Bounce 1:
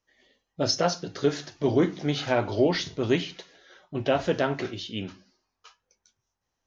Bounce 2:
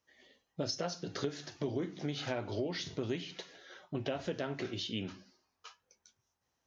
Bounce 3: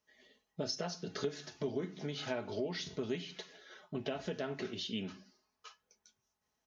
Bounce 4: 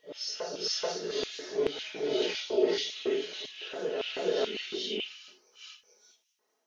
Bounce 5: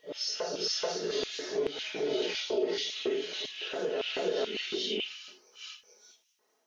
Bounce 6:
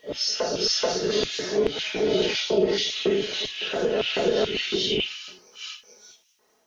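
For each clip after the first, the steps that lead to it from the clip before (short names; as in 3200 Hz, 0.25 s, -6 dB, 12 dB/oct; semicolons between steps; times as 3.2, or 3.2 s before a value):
HPF 67 Hz; dynamic EQ 980 Hz, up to -4 dB, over -37 dBFS, Q 0.97; compressor 5:1, threshold -34 dBFS, peak gain reduction 15 dB
comb 4.7 ms, depth 51%; gain -2.5 dB
phase scrambler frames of 0.2 s; LFO high-pass square 1.8 Hz 400–2800 Hz; reverse echo 0.432 s -4 dB; gain +5.5 dB
compressor 2.5:1, threshold -33 dBFS, peak gain reduction 9.5 dB; gain +3.5 dB
octaver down 1 oct, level -5 dB; gain +8 dB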